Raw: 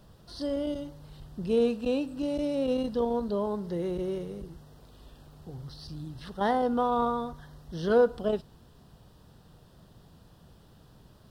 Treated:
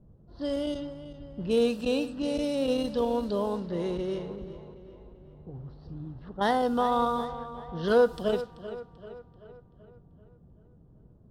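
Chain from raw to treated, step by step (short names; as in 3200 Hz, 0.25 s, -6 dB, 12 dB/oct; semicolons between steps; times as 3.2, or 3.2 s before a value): high shelf 2200 Hz +8.5 dB; low-pass opened by the level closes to 330 Hz, open at -25 dBFS; on a send: tape echo 0.386 s, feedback 54%, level -12.5 dB, low-pass 4000 Hz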